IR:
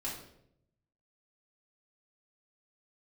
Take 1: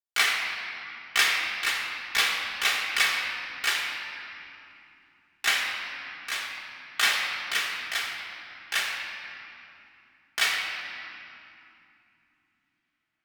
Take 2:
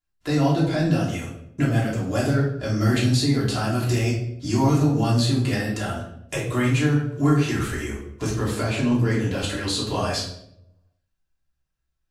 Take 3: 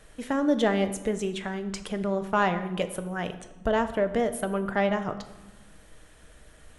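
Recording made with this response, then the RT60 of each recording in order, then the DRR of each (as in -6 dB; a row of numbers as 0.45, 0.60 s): 2; 2.8, 0.75, 1.2 s; -3.5, -6.5, 8.0 dB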